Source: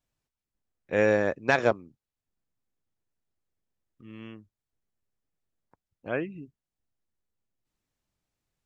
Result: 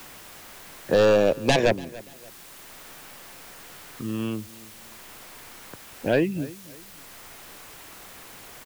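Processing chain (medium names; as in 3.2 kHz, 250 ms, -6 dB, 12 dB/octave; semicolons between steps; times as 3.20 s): sine folder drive 11 dB, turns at -7 dBFS; LFO notch sine 0.32 Hz 810–2300 Hz; added noise white -48 dBFS; on a send: feedback delay 288 ms, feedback 23%, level -23 dB; on the sum: three bands compressed up and down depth 40%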